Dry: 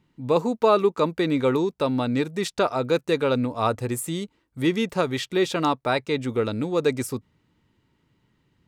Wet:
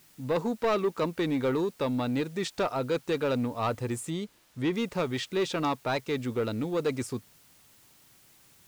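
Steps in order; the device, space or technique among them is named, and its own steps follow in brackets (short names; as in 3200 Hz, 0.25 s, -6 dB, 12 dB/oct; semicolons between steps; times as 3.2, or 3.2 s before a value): compact cassette (soft clip -17.5 dBFS, distortion -13 dB; LPF 8600 Hz; wow and flutter; white noise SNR 29 dB); 4.1–4.73 high shelf 6900 Hz -8.5 dB; gain -3.5 dB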